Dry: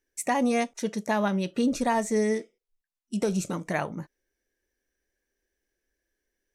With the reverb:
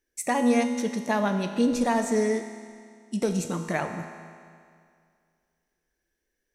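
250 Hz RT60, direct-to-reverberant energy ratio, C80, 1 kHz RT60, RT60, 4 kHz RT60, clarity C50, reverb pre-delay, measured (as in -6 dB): 2.2 s, 6.0 dB, 8.5 dB, 2.2 s, 2.2 s, 2.1 s, 7.5 dB, 5 ms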